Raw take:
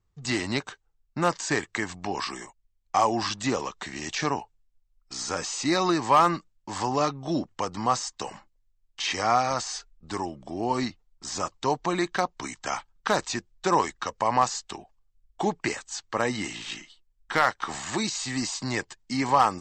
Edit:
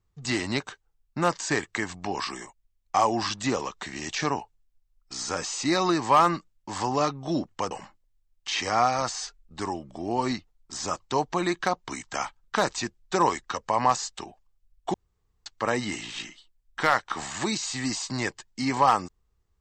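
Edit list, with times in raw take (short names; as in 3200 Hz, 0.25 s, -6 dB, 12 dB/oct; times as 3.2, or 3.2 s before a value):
7.71–8.23 cut
15.46–15.98 room tone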